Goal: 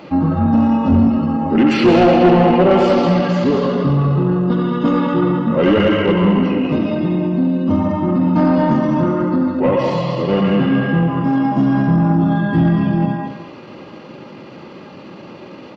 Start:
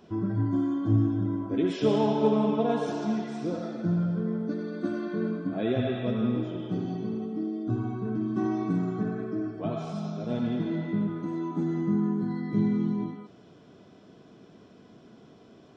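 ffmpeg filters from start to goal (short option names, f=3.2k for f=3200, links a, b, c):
-filter_complex "[0:a]bandreject=f=60:t=h:w=6,bandreject=f=120:t=h:w=6,bandreject=f=180:t=h:w=6,aecho=1:1:209:0.376,asplit=2[a][b];[b]highpass=f=720:p=1,volume=21dB,asoftclip=type=tanh:threshold=-10.5dB[c];[a][c]amix=inputs=2:normalize=0,lowpass=f=3.2k:p=1,volume=-6dB,asetrate=36028,aresample=44100,atempo=1.22405,volume=8.5dB"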